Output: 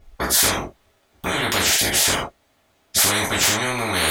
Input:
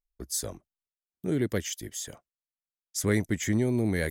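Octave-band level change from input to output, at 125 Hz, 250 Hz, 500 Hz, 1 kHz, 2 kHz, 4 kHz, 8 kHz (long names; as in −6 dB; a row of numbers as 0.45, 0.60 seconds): 0.0, −0.5, +5.0, +22.5, +15.0, +21.0, +15.5 decibels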